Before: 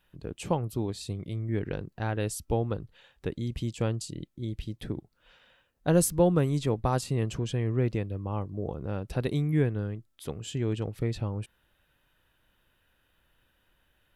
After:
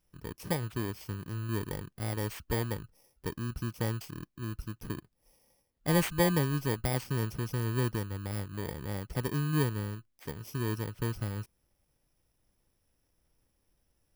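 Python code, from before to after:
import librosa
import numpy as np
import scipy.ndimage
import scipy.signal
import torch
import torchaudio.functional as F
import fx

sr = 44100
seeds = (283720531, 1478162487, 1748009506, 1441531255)

y = fx.bit_reversed(x, sr, seeds[0], block=32)
y = fx.high_shelf(y, sr, hz=5300.0, db=-6.5)
y = y * 10.0 ** (-3.0 / 20.0)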